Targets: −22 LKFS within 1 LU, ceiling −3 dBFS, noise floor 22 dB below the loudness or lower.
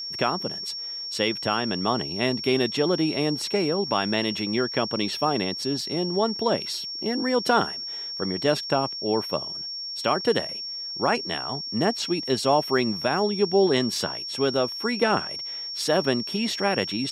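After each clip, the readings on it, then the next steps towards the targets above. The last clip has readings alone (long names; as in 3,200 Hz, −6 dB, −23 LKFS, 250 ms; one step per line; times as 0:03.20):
interfering tone 5,500 Hz; level of the tone −31 dBFS; integrated loudness −25.0 LKFS; sample peak −8.5 dBFS; target loudness −22.0 LKFS
→ notch filter 5,500 Hz, Q 30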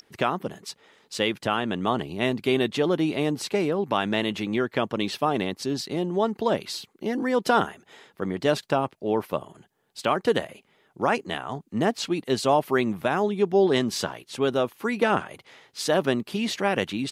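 interfering tone none found; integrated loudness −26.0 LKFS; sample peak −9.0 dBFS; target loudness −22.0 LKFS
→ level +4 dB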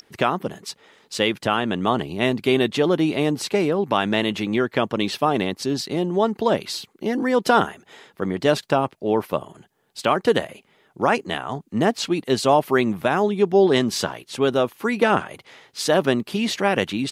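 integrated loudness −22.0 LKFS; sample peak −5.0 dBFS; background noise floor −62 dBFS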